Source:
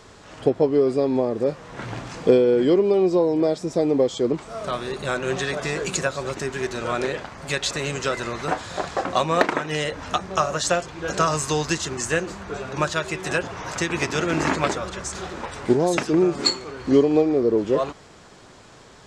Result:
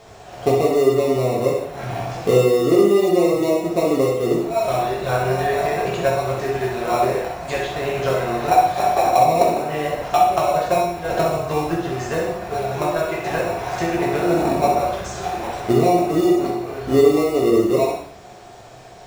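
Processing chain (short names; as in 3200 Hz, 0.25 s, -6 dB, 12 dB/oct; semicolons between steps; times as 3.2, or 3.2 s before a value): treble ducked by the level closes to 500 Hz, closed at -17 dBFS; bell 700 Hz +14 dB 0.35 oct; in parallel at -8.5 dB: sample-rate reducer 1600 Hz, jitter 0%; on the sum: flutter echo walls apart 10.8 m, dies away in 0.47 s; non-linear reverb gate 0.22 s falling, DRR -3.5 dB; gain -4.5 dB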